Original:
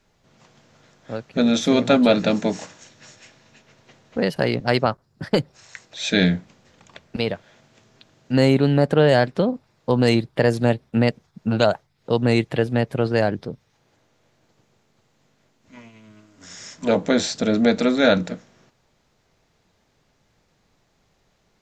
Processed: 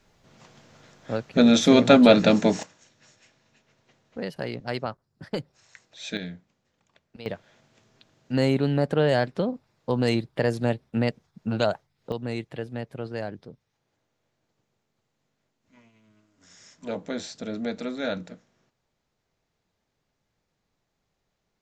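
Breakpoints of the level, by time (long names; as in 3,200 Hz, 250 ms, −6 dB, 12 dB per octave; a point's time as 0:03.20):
+1.5 dB
from 0:02.63 −11 dB
from 0:06.17 −18.5 dB
from 0:07.26 −6 dB
from 0:12.12 −13 dB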